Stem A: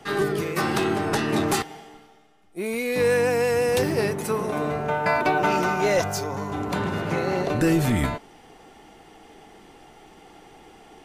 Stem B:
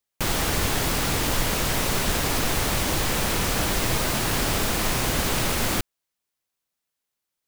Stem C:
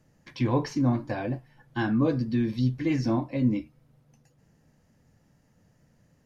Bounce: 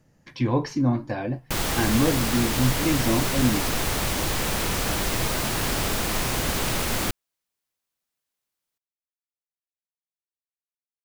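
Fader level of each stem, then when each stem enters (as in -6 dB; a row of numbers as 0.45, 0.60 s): off, -1.5 dB, +2.0 dB; off, 1.30 s, 0.00 s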